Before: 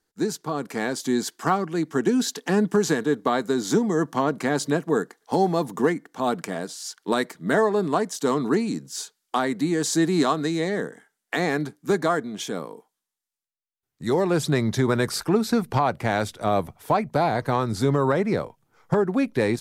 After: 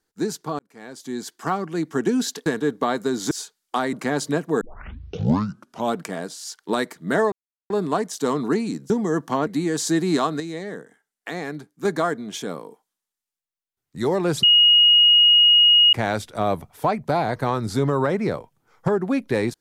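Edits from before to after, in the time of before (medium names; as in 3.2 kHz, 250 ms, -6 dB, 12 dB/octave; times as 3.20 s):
0.59–1.80 s: fade in
2.46–2.90 s: delete
3.75–4.32 s: swap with 8.91–9.53 s
5.00 s: tape start 1.34 s
7.71 s: insert silence 0.38 s
10.46–11.91 s: gain -6.5 dB
14.49–15.99 s: bleep 2.88 kHz -10.5 dBFS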